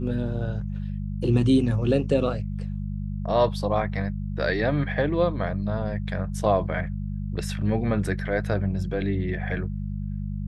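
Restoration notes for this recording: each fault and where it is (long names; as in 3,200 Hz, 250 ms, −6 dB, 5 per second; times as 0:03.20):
mains hum 50 Hz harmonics 4 −30 dBFS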